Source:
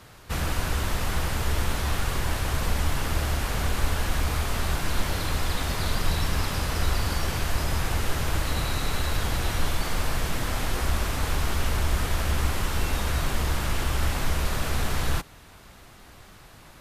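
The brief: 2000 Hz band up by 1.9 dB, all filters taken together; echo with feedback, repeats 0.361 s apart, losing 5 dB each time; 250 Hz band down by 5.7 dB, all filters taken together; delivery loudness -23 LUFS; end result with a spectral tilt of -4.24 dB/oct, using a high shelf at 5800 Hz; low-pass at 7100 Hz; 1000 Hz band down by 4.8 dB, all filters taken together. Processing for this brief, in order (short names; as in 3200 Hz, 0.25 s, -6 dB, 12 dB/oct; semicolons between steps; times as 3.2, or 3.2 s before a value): LPF 7100 Hz; bell 250 Hz -8.5 dB; bell 1000 Hz -7.5 dB; bell 2000 Hz +4 dB; high shelf 5800 Hz +7 dB; feedback echo 0.361 s, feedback 56%, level -5 dB; gain +4 dB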